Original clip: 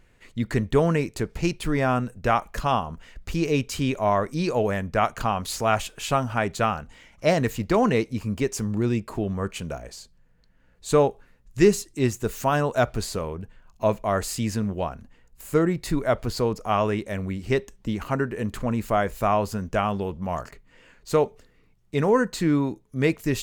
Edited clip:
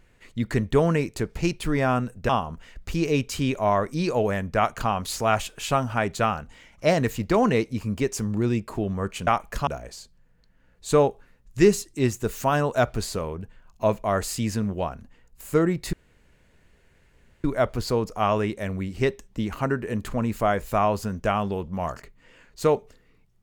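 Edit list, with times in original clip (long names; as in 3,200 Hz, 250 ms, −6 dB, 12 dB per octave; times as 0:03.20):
0:02.29–0:02.69: move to 0:09.67
0:15.93: splice in room tone 1.51 s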